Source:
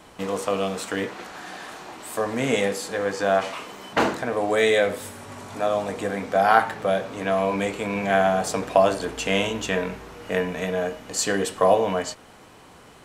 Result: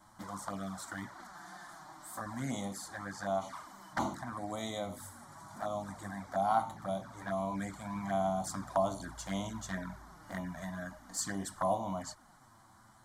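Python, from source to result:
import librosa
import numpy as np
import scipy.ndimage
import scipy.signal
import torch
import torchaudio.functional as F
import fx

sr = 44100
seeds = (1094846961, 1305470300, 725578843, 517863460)

y = fx.env_flanger(x, sr, rest_ms=10.9, full_db=-19.0)
y = fx.fixed_phaser(y, sr, hz=1100.0, stages=4)
y = F.gain(torch.from_numpy(y), -6.0).numpy()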